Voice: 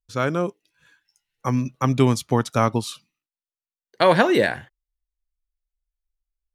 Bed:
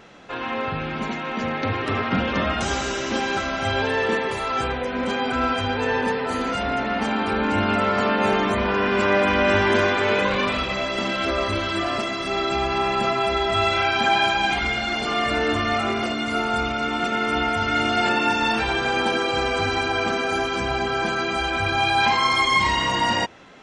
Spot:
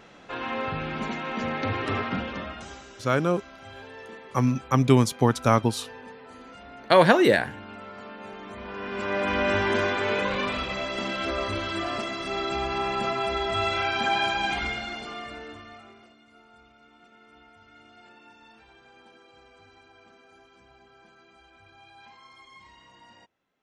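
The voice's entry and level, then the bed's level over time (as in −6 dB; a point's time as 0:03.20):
2.90 s, −0.5 dB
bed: 0:01.96 −3.5 dB
0:02.88 −21 dB
0:08.36 −21 dB
0:09.35 −5.5 dB
0:14.64 −5.5 dB
0:16.22 −32 dB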